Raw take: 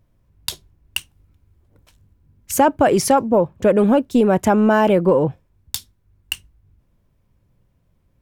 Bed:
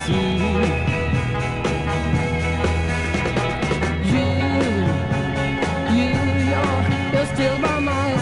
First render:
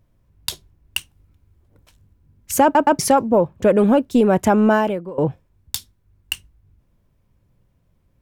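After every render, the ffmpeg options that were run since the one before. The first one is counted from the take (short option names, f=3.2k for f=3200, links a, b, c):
-filter_complex "[0:a]asplit=5[a][b][c][d][e];[a]atrim=end=2.752[f];[b]atrim=start=2.628:end=2.752[g];[c]atrim=start=2.628:end=2.752[h];[d]atrim=start=2.988:end=5.18,asetpts=PTS-STARTPTS,afade=t=out:st=1.742:d=0.45:c=qua:silence=0.105925[i];[e]atrim=start=5.18,asetpts=PTS-STARTPTS,afade=t=in:d=0.004:c=hsin:silence=0.105925[j];[f][g]acrossfade=d=0.004:c1=hsin:c2=hsin[k];[k][h]acrossfade=d=0.004:c1=hsin:c2=hsin[l];[i][j]concat=n=2:v=0:a=1[m];[l][m]acrossfade=d=0.004:c1=hsin:c2=hsin"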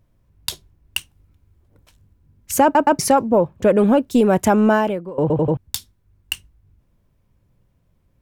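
-filter_complex "[0:a]asettb=1/sr,asplit=3[a][b][c];[a]atrim=end=2.594[d];[b]atrim=start=2.59:end=3.16,asetpts=PTS-STARTPTS,afade=t=in:d=0.004:c=qsin,afade=t=out:st=0.566:d=0.004:c=qsin,bandreject=f=3.3k:w=12[e];[c]atrim=start=3.156[f];[d][e]acrossfade=d=0.004:c1=hsin:c2=qsin[g];[g][f]acrossfade=d=0.004:c1=qsin:c2=hsin,asettb=1/sr,asplit=3[h][i][j];[h]atrim=end=4.074[k];[i]atrim=start=4.07:end=4.71,asetpts=PTS-STARTPTS,afade=t=in:d=0.004:c=qsin,afade=t=out:st=0.636:d=0.004:c=qsin,highshelf=f=4.9k:g=5.5[l];[j]atrim=start=4.706[m];[k][l]acrossfade=d=0.004:c1=hsin:c2=qsin[n];[n][m]acrossfade=d=0.004:c1=qsin:c2=hsin,asplit=5[o][p][q][r][s];[o]atrim=end=5.302[t];[p]atrim=start=5.208:end=5.302[u];[q]atrim=start=5.208:end=5.302[v];[r]atrim=start=5.208:end=5.302[w];[s]atrim=start=5.568[x];[t][u]acrossfade=d=0.004:c1=hsin:c2=hsin[y];[y][v]acrossfade=d=0.004:c1=hsin:c2=hsin[z];[z][w]acrossfade=d=0.004:c1=hsin:c2=hsin[aa];[aa][x]acrossfade=d=0.004:c1=hsin:c2=hsin"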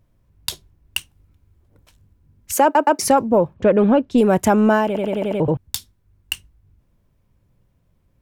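-filter_complex "[0:a]asettb=1/sr,asplit=3[a][b][c];[a]atrim=end=2.534[d];[b]atrim=start=2.53:end=3.02,asetpts=PTS-STARTPTS,afade=t=in:d=0.004:c=qsin,afade=t=out:st=0.486:d=0.004:c=qsin,highpass=f=300:w=0.5412,highpass=f=300:w=1.3066[e];[c]atrim=start=3.016[f];[d][e]acrossfade=d=0.004:c1=hsin:c2=qsin[g];[g][f]acrossfade=d=0.004:c1=qsin:c2=hsin,asettb=1/sr,asplit=3[h][i][j];[h]atrim=end=3.544[k];[i]atrim=start=3.54:end=4.18,asetpts=PTS-STARTPTS,afade=t=in:d=0.004:c=qsin,afade=t=out:st=0.636:d=0.004:c=qsin,lowpass=3.9k[l];[j]atrim=start=4.176[m];[k][l]acrossfade=d=0.004:c1=hsin:c2=qsin[n];[n][m]acrossfade=d=0.004:c1=qsin:c2=hsin,asplit=7[o][p][q][r][s][t][u];[o]atrim=end=4.952[v];[p]atrim=start=4.858:end=4.952[w];[q]atrim=start=4.858:end=4.952[x];[r]atrim=start=4.858:end=4.952[y];[s]atrim=start=4.858:end=4.952[z];[t]atrim=start=4.858:end=4.952[aa];[u]atrim=start=5.398[ab];[v][w]acrossfade=d=0.004:c1=hsin:c2=hsin[ac];[ac][x]acrossfade=d=0.004:c1=hsin:c2=hsin[ad];[ad][y]acrossfade=d=0.004:c1=hsin:c2=hsin[ae];[ae][z]acrossfade=d=0.004:c1=hsin:c2=hsin[af];[af][aa]acrossfade=d=0.004:c1=hsin:c2=hsin[ag];[ag][ab]acrossfade=d=0.004:c1=hsin:c2=hsin"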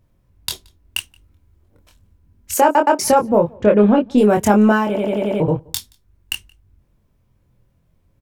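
-filter_complex "[0:a]asplit=2[a][b];[b]adelay=24,volume=-4dB[c];[a][c]amix=inputs=2:normalize=0,asplit=2[d][e];[e]adelay=174.9,volume=-28dB,highshelf=f=4k:g=-3.94[f];[d][f]amix=inputs=2:normalize=0"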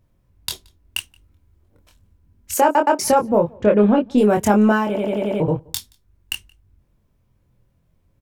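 -af "volume=-2dB"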